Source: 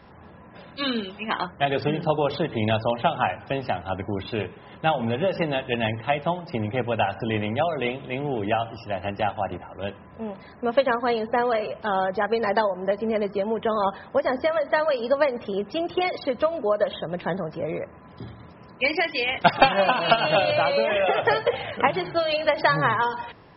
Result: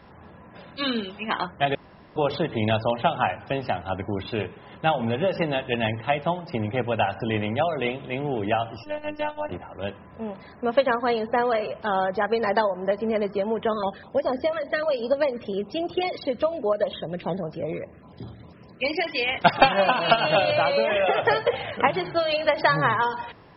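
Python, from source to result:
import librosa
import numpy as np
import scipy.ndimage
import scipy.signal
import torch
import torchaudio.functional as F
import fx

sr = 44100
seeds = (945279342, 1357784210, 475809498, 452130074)

y = fx.robotise(x, sr, hz=301.0, at=(8.83, 9.49))
y = fx.filter_held_notch(y, sr, hz=10.0, low_hz=810.0, high_hz=2000.0, at=(13.73, 19.07))
y = fx.edit(y, sr, fx.room_tone_fill(start_s=1.75, length_s=0.41), tone=tone)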